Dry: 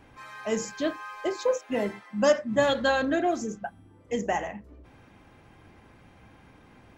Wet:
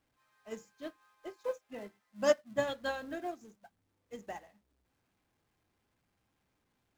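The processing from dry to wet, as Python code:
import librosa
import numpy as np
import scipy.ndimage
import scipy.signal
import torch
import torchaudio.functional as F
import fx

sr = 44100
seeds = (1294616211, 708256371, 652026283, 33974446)

y = x + 0.5 * 10.0 ** (-35.5 / 20.0) * np.sign(x)
y = fx.dmg_crackle(y, sr, seeds[0], per_s=460.0, level_db=-36.0)
y = fx.upward_expand(y, sr, threshold_db=-39.0, expansion=2.5)
y = y * librosa.db_to_amplitude(-4.5)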